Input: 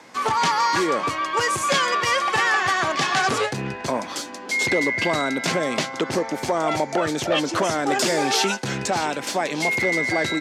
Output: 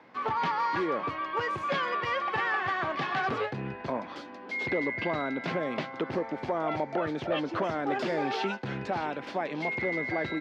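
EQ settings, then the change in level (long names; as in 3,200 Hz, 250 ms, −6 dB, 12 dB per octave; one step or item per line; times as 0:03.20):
high-frequency loss of the air 340 metres
−6.5 dB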